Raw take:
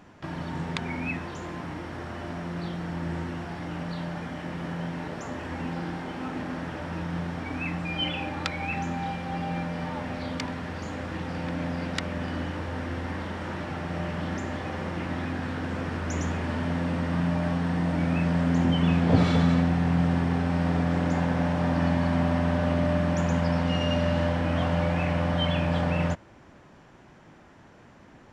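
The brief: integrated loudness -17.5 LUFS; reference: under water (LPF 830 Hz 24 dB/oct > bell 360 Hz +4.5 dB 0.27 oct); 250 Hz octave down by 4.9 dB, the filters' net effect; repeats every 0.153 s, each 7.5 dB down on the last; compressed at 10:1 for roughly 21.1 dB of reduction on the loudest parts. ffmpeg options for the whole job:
-af "equalizer=f=250:t=o:g=-8,acompressor=threshold=-40dB:ratio=10,lowpass=f=830:w=0.5412,lowpass=f=830:w=1.3066,equalizer=f=360:t=o:w=0.27:g=4.5,aecho=1:1:153|306|459|612|765:0.422|0.177|0.0744|0.0312|0.0131,volume=26dB"

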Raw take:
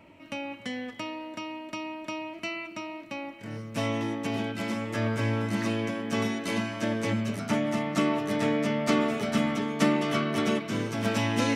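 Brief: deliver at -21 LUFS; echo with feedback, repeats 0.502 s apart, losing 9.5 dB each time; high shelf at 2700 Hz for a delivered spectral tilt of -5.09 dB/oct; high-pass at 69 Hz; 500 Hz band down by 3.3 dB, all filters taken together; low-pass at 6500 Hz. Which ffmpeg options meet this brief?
-af "highpass=69,lowpass=6.5k,equalizer=f=500:t=o:g=-4,highshelf=f=2.7k:g=-4,aecho=1:1:502|1004|1506|2008:0.335|0.111|0.0365|0.012,volume=9.5dB"

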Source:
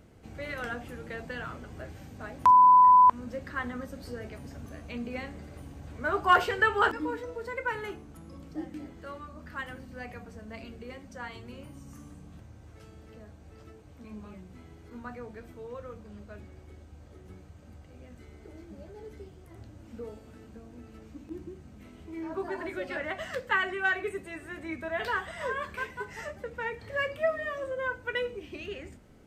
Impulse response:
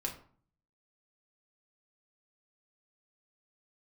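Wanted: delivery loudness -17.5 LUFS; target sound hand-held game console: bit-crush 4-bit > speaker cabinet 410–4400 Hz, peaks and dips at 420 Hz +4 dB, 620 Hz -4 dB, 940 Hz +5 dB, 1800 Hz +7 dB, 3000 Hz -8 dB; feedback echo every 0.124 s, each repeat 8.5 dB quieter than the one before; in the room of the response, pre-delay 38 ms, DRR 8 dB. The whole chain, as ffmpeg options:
-filter_complex "[0:a]aecho=1:1:124|248|372|496:0.376|0.143|0.0543|0.0206,asplit=2[a][b];[1:a]atrim=start_sample=2205,adelay=38[c];[b][c]afir=irnorm=-1:irlink=0,volume=-9.5dB[d];[a][d]amix=inputs=2:normalize=0,acrusher=bits=3:mix=0:aa=0.000001,highpass=410,equalizer=f=420:t=q:w=4:g=4,equalizer=f=620:t=q:w=4:g=-4,equalizer=f=940:t=q:w=4:g=5,equalizer=f=1.8k:t=q:w=4:g=7,equalizer=f=3k:t=q:w=4:g=-8,lowpass=f=4.4k:w=0.5412,lowpass=f=4.4k:w=1.3066,volume=-0.5dB"

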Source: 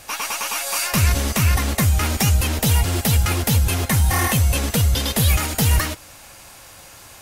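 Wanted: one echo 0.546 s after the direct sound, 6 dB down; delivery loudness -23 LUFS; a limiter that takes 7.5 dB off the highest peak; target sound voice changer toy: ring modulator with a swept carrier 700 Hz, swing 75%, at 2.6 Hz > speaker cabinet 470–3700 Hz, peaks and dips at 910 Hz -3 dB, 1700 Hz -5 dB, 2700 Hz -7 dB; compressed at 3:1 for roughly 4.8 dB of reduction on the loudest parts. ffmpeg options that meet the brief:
-af "acompressor=threshold=-19dB:ratio=3,alimiter=limit=-15dB:level=0:latency=1,aecho=1:1:546:0.501,aeval=exprs='val(0)*sin(2*PI*700*n/s+700*0.75/2.6*sin(2*PI*2.6*n/s))':c=same,highpass=470,equalizer=f=910:t=q:w=4:g=-3,equalizer=f=1.7k:t=q:w=4:g=-5,equalizer=f=2.7k:t=q:w=4:g=-7,lowpass=f=3.7k:w=0.5412,lowpass=f=3.7k:w=1.3066,volume=6.5dB"

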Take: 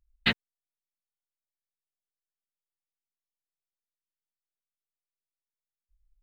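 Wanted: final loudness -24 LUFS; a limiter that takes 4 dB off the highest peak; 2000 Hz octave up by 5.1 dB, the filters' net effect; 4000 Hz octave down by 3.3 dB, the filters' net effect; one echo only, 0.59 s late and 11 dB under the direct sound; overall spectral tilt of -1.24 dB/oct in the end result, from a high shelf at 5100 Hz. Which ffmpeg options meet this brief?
-af "equalizer=f=2k:t=o:g=8.5,equalizer=f=4k:t=o:g=-6,highshelf=f=5.1k:g=-7.5,alimiter=limit=-12.5dB:level=0:latency=1,aecho=1:1:590:0.282,volume=8dB"

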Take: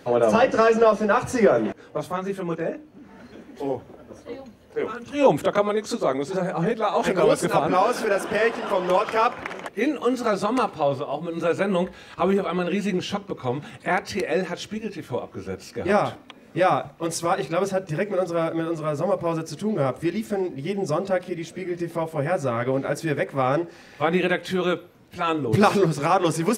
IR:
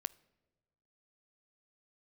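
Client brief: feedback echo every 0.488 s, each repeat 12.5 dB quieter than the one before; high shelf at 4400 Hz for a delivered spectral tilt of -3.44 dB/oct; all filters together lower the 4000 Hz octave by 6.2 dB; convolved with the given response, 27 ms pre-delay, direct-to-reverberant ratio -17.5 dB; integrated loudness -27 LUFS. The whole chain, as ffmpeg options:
-filter_complex "[0:a]equalizer=f=4k:t=o:g=-5,highshelf=f=4.4k:g=-6.5,aecho=1:1:488|976|1464:0.237|0.0569|0.0137,asplit=2[a][b];[1:a]atrim=start_sample=2205,adelay=27[c];[b][c]afir=irnorm=-1:irlink=0,volume=19.5dB[d];[a][d]amix=inputs=2:normalize=0,volume=-20.5dB"

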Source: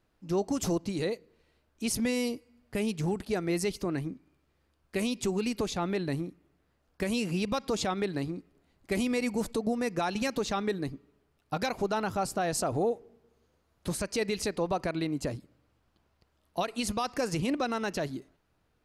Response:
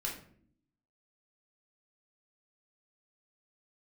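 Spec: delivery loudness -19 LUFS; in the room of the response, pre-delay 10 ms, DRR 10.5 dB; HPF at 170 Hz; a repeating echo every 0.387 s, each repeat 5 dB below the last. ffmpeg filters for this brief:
-filter_complex "[0:a]highpass=170,aecho=1:1:387|774|1161|1548|1935|2322|2709:0.562|0.315|0.176|0.0988|0.0553|0.031|0.0173,asplit=2[a][b];[1:a]atrim=start_sample=2205,adelay=10[c];[b][c]afir=irnorm=-1:irlink=0,volume=-12.5dB[d];[a][d]amix=inputs=2:normalize=0,volume=12.5dB"

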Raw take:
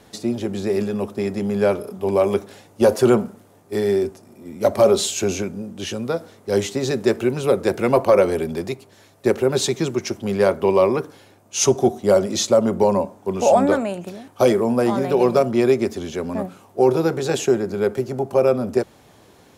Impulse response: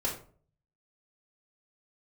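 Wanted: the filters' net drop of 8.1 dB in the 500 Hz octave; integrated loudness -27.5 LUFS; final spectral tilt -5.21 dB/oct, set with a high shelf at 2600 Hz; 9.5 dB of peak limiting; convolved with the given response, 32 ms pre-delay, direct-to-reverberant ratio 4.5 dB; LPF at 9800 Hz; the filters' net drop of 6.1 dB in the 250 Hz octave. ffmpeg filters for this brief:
-filter_complex "[0:a]lowpass=9.8k,equalizer=f=250:t=o:g=-5,equalizer=f=500:t=o:g=-8.5,highshelf=f=2.6k:g=-6,alimiter=limit=-18dB:level=0:latency=1,asplit=2[a][b];[1:a]atrim=start_sample=2205,adelay=32[c];[b][c]afir=irnorm=-1:irlink=0,volume=-10dB[d];[a][d]amix=inputs=2:normalize=0,volume=0.5dB"

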